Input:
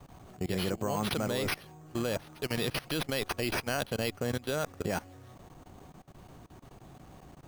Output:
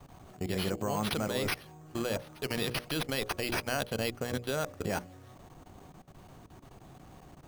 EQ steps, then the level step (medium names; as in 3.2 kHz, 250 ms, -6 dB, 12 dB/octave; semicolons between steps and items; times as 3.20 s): hum notches 60/120/180/240/300/360/420/480/540/600 Hz; 0.0 dB